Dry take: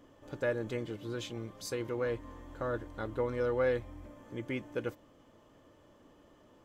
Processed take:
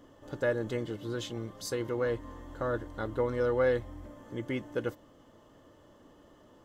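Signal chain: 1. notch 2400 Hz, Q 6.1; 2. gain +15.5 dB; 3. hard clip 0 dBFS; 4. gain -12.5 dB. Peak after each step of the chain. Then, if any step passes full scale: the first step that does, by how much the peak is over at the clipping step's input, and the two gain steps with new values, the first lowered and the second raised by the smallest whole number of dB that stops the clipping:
-20.5, -5.0, -5.0, -17.5 dBFS; no overload

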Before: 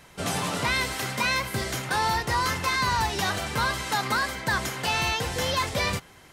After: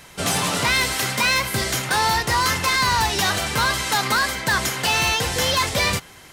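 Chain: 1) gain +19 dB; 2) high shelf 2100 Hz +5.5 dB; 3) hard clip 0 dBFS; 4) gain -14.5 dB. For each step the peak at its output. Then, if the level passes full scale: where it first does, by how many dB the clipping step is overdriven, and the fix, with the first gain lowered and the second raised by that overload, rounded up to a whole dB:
+4.5, +7.0, 0.0, -14.5 dBFS; step 1, 7.0 dB; step 1 +12 dB, step 4 -7.5 dB

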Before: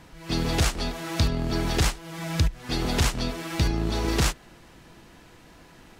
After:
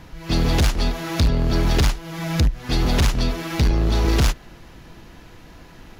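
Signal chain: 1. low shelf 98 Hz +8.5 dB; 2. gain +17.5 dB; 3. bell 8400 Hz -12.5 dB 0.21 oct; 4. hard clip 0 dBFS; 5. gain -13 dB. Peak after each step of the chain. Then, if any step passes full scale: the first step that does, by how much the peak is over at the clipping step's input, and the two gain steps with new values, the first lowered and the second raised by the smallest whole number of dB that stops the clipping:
-8.0, +9.5, +9.5, 0.0, -13.0 dBFS; step 2, 9.5 dB; step 2 +7.5 dB, step 5 -3 dB

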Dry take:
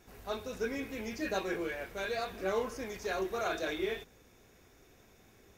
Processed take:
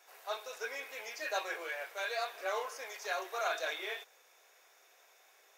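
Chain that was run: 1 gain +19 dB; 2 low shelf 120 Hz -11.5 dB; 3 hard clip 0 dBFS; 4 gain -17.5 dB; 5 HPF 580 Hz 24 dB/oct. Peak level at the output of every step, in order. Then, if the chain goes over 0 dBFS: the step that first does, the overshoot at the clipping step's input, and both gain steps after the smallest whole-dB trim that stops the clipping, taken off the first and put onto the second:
-3.0, -3.0, -3.0, -20.5, -22.0 dBFS; no overload

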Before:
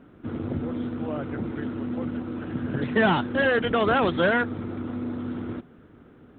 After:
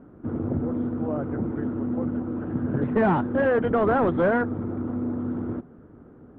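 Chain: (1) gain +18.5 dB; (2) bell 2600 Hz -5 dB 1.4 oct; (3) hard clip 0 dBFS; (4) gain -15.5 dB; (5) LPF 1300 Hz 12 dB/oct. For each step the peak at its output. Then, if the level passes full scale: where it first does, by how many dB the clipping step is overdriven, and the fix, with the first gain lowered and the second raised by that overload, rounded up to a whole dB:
+8.5, +8.0, 0.0, -15.5, -15.0 dBFS; step 1, 8.0 dB; step 1 +10.5 dB, step 4 -7.5 dB

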